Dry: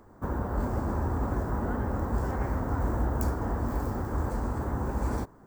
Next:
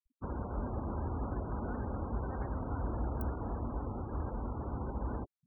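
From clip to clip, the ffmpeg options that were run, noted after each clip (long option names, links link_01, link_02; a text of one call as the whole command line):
ffmpeg -i in.wav -af "afftfilt=real='re*gte(hypot(re,im),0.02)':imag='im*gte(hypot(re,im),0.02)':win_size=1024:overlap=0.75,volume=-7.5dB" out.wav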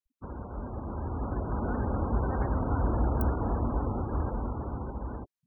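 ffmpeg -i in.wav -af "dynaudnorm=framelen=210:gausssize=13:maxgain=10dB,volume=-1.5dB" out.wav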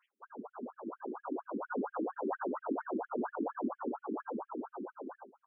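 ffmpeg -i in.wav -af "aecho=1:1:386:0.15,acompressor=mode=upward:threshold=-45dB:ratio=2.5,afftfilt=real='re*between(b*sr/1024,290*pow(2500/290,0.5+0.5*sin(2*PI*4.3*pts/sr))/1.41,290*pow(2500/290,0.5+0.5*sin(2*PI*4.3*pts/sr))*1.41)':imag='im*between(b*sr/1024,290*pow(2500/290,0.5+0.5*sin(2*PI*4.3*pts/sr))/1.41,290*pow(2500/290,0.5+0.5*sin(2*PI*4.3*pts/sr))*1.41)':win_size=1024:overlap=0.75,volume=3.5dB" out.wav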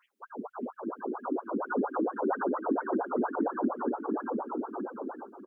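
ffmpeg -i in.wav -af "aecho=1:1:596|1192|1788:0.237|0.0522|0.0115,volume=6.5dB" out.wav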